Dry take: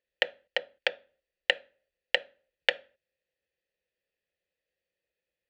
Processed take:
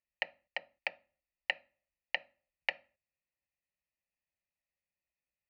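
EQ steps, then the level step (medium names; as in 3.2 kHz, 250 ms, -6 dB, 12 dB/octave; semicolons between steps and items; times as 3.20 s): distance through air 150 m; static phaser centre 2.3 kHz, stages 8; -2.5 dB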